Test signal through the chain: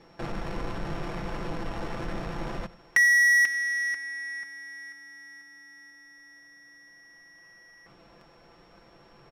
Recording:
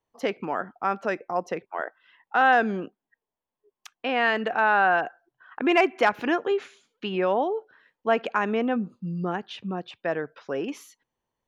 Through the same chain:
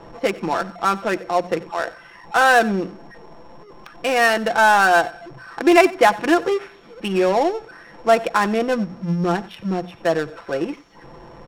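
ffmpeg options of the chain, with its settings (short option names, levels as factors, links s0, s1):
-filter_complex "[0:a]aeval=exprs='val(0)+0.5*0.0188*sgn(val(0))':c=same,bandreject=f=60:t=h:w=6,bandreject=f=120:t=h:w=6,bandreject=f=180:t=h:w=6,aecho=1:1:5.9:0.55,asplit=2[s0][s1];[s1]acrusher=bits=3:mix=0:aa=0.5,volume=0.335[s2];[s0][s2]amix=inputs=2:normalize=0,aeval=exprs='val(0)+0.0141*sin(2*PI*5500*n/s)':c=same,adynamicsmooth=sensitivity=3:basefreq=770,aecho=1:1:92:0.1,volume=1.26"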